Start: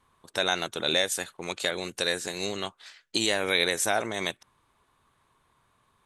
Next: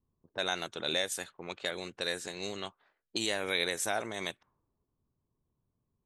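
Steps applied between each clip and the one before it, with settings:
low-pass that shuts in the quiet parts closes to 300 Hz, open at −26 dBFS
level −6.5 dB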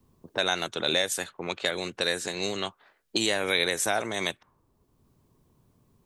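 multiband upward and downward compressor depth 40%
level +6.5 dB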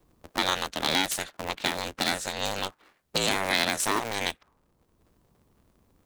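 sub-harmonics by changed cycles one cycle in 2, inverted

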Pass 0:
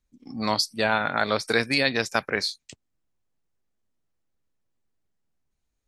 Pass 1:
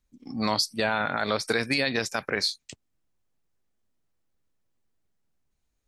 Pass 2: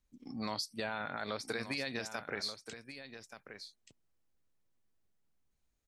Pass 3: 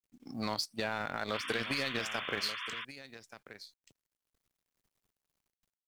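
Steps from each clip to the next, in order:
brickwall limiter −14 dBFS, peak gain reduction 8.5 dB; level +1.5 dB
downward compressor 1.5 to 1, threshold −45 dBFS, peak gain reduction 9 dB; single-tap delay 1,179 ms −11 dB; level −4 dB
mu-law and A-law mismatch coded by A; sound drawn into the spectrogram noise, 0:01.33–0:02.85, 970–3,600 Hz −46 dBFS; level +5 dB

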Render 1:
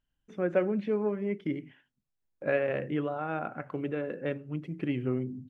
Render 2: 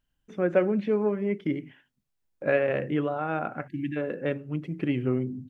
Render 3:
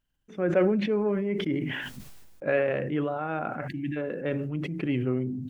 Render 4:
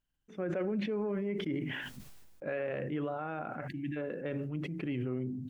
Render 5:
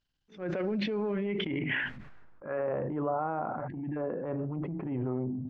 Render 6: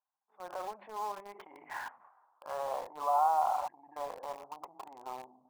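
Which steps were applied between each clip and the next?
time-frequency box erased 0:03.68–0:03.97, 350–1,600 Hz; level +4 dB
level that may fall only so fast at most 30 dB per second; level −2 dB
brickwall limiter −21 dBFS, peak gain reduction 8.5 dB; level −5.5 dB
transient designer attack −11 dB, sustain +4 dB; low-pass filter sweep 4,700 Hz → 990 Hz, 0:00.87–0:02.73; level +2.5 dB
flat-topped band-pass 910 Hz, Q 2.4; in parallel at −7 dB: bit reduction 8 bits; on the sum: level +5.5 dB

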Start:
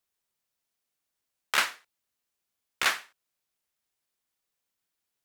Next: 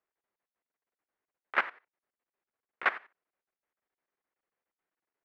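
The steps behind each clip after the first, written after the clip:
drawn EQ curve 120 Hz 0 dB, 390 Hz +12 dB, 2,000 Hz +8 dB, 7,100 Hz −27 dB
output level in coarse steps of 17 dB
level −6 dB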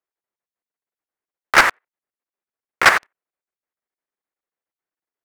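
leveller curve on the samples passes 5
level +6 dB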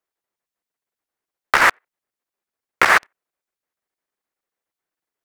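compressor whose output falls as the input rises −13 dBFS, ratio −0.5
level +2 dB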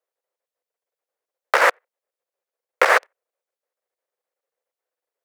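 high-pass with resonance 510 Hz, resonance Q 4.9
level −4 dB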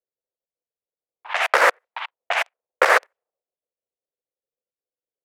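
delay with pitch and tempo change per echo 192 ms, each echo +5 semitones, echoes 2, each echo −6 dB
low-pass that shuts in the quiet parts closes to 330 Hz, open at −17 dBFS

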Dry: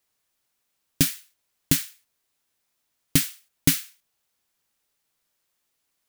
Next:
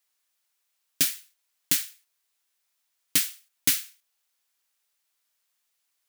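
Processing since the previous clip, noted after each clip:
high-pass filter 1,200 Hz 6 dB per octave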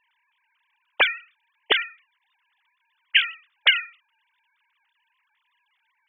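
three sine waves on the formant tracks
level +4.5 dB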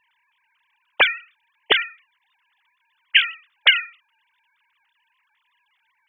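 parametric band 130 Hz +14 dB 0.33 octaves
level +3 dB

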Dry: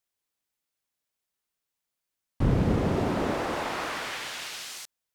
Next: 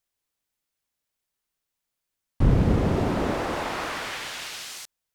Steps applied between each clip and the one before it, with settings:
low-shelf EQ 79 Hz +7.5 dB
level +1.5 dB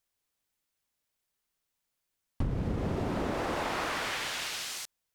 downward compressor 8 to 1, threshold −28 dBFS, peak gain reduction 14.5 dB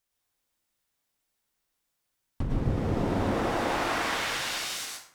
dense smooth reverb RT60 0.61 s, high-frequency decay 0.65×, pre-delay 90 ms, DRR −2 dB

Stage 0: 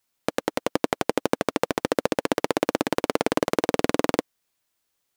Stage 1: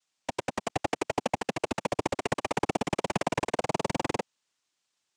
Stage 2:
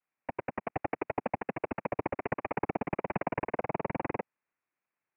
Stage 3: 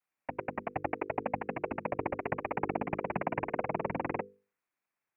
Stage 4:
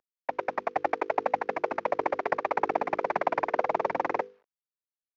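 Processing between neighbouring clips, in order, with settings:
cochlear-implant simulation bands 4; level −5.5 dB
Butterworth low-pass 2,500 Hz 72 dB per octave; level −3.5 dB
mains-hum notches 50/100/150/200/250/300/350/400/450/500 Hz
variable-slope delta modulation 32 kbit/s; three-way crossover with the lows and the highs turned down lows −20 dB, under 390 Hz, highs −16 dB, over 2,300 Hz; level +9 dB

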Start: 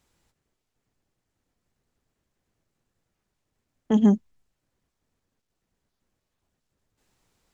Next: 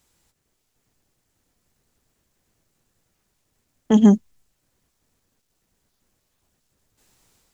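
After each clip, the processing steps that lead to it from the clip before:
high-shelf EQ 4,900 Hz +9 dB
automatic gain control gain up to 5 dB
level +1 dB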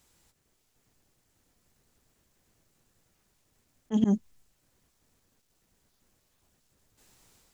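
volume swells 211 ms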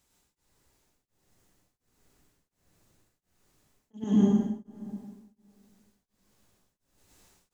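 dense smooth reverb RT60 2.1 s, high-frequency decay 0.65×, pre-delay 85 ms, DRR −8.5 dB
tremolo along a rectified sine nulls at 1.4 Hz
level −5.5 dB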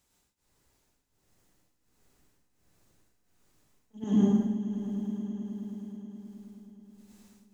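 echo that builds up and dies away 106 ms, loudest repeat 5, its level −18 dB
level −1.5 dB

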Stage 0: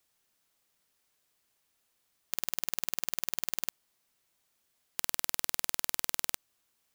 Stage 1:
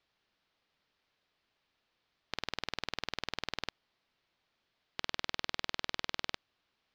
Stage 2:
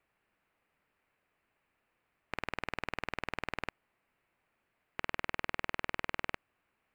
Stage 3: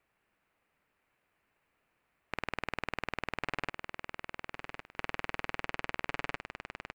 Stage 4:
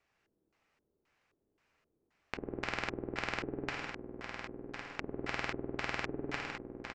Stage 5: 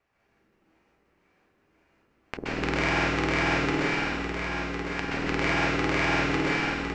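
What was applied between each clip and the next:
inverse Chebyshev low-pass filter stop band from 10,000 Hz, stop band 50 dB; level +1.5 dB
flat-topped bell 4,500 Hz −15.5 dB 1.2 octaves; level +3 dB
repeating echo 1,107 ms, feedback 26%, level −7 dB; level +1 dB
slap from a distant wall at 210 metres, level −11 dB; reverb whose tail is shaped and stops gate 230 ms flat, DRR 1 dB; auto-filter low-pass square 1.9 Hz 370–5,800 Hz; level −2 dB
dense smooth reverb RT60 1.8 s, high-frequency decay 0.85×, pre-delay 115 ms, DRR −6.5 dB; one half of a high-frequency compander decoder only; level +5.5 dB

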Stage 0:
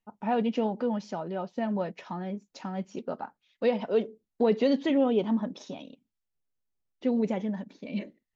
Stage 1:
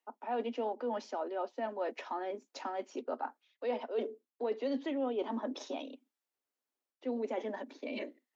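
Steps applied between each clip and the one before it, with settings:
Butterworth high-pass 240 Hz 96 dB per octave
parametric band 880 Hz +4.5 dB 2.6 octaves
reversed playback
downward compressor 4 to 1, threshold −34 dBFS, peak gain reduction 14.5 dB
reversed playback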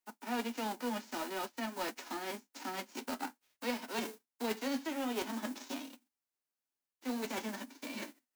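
spectral envelope flattened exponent 0.3
parametric band 3,400 Hz −3.5 dB 0.63 octaves
flanger 0.5 Hz, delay 5.3 ms, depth 7.9 ms, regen −44%
level +2 dB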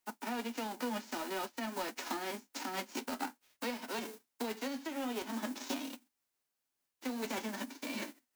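downward compressor, threshold −42 dBFS, peak gain reduction 11.5 dB
amplitude modulation by smooth noise, depth 50%
level +9 dB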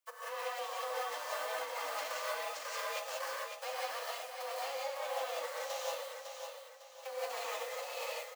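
repeating echo 553 ms, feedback 37%, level −6.5 dB
reverb whose tail is shaped and stops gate 210 ms rising, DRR −4.5 dB
frequency shifter +270 Hz
level −6 dB

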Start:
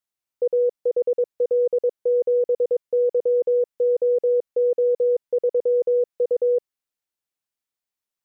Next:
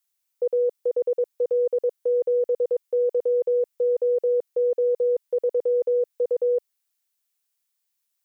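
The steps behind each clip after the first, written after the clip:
spectral tilt +3 dB per octave
level +1 dB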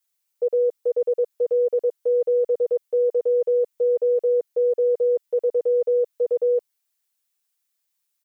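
comb filter 6.6 ms, depth 92%
level −1.5 dB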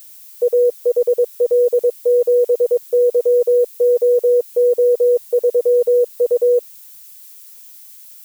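background noise violet −47 dBFS
level +6.5 dB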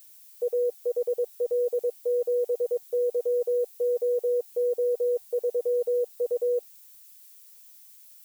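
tuned comb filter 380 Hz, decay 0.19 s, harmonics all, mix 60%
level −4.5 dB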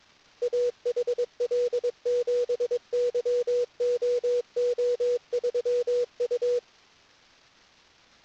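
variable-slope delta modulation 32 kbit/s

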